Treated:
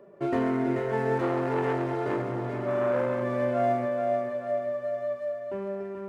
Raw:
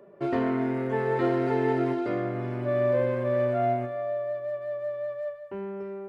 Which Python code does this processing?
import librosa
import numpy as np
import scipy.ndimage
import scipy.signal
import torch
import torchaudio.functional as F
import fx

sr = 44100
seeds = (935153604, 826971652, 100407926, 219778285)

y = scipy.ndimage.median_filter(x, 9, mode='constant')
y = fx.echo_feedback(y, sr, ms=434, feedback_pct=46, wet_db=-6)
y = fx.transformer_sat(y, sr, knee_hz=780.0, at=(1.18, 3.22))